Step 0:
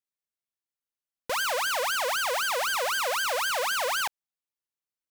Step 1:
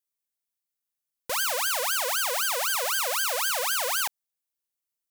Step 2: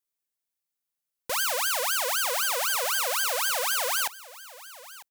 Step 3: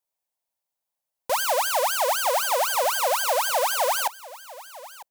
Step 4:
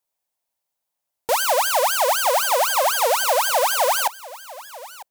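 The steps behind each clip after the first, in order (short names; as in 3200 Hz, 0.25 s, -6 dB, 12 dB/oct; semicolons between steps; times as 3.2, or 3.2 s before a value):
high shelf 5700 Hz +11.5 dB; gain -2.5 dB
echo 0.949 s -18.5 dB
band shelf 730 Hz +10.5 dB 1.1 oct
record warp 33 1/3 rpm, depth 100 cents; gain +4 dB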